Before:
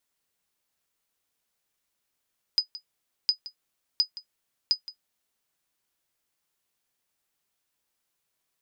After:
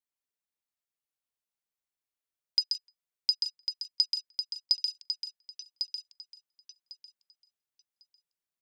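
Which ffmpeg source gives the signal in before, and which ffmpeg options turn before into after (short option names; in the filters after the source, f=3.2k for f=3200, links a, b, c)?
-f lavfi -i "aevalsrc='0.237*(sin(2*PI*4980*mod(t,0.71))*exp(-6.91*mod(t,0.71)/0.1)+0.141*sin(2*PI*4980*max(mod(t,0.71)-0.17,0))*exp(-6.91*max(mod(t,0.71)-0.17,0)/0.1))':d=2.84:s=44100"
-filter_complex "[0:a]asplit=2[a][b];[b]aecho=0:1:132|883:0.531|0.126[c];[a][c]amix=inputs=2:normalize=0,afwtdn=0.00501,asplit=2[d][e];[e]aecho=0:1:1100|2200|3300:0.447|0.0804|0.0145[f];[d][f]amix=inputs=2:normalize=0"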